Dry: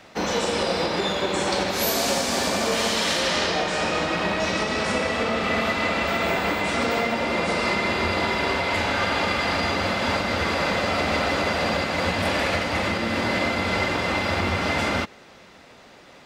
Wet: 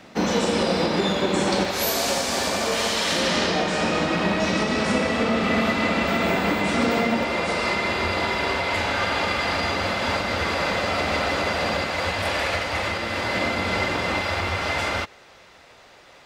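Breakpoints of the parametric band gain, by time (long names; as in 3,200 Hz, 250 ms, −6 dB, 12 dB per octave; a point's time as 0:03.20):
parametric band 220 Hz 1.3 octaves
+7.5 dB
from 0:01.65 −3 dB
from 0:03.12 +6.5 dB
from 0:07.23 −3 dB
from 0:11.90 −9 dB
from 0:13.35 −1.5 dB
from 0:14.21 −9.5 dB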